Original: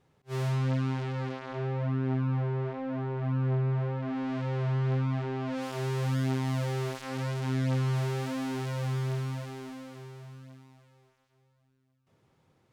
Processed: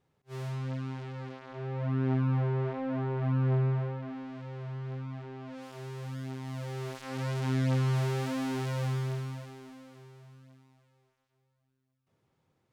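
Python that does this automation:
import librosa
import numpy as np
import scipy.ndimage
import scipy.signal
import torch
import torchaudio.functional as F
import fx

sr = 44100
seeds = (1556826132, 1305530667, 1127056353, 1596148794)

y = fx.gain(x, sr, db=fx.line((1.52, -7.0), (2.02, 1.0), (3.64, 1.0), (4.32, -10.0), (6.37, -10.0), (7.38, 0.5), (8.83, 0.5), (9.6, -7.0)))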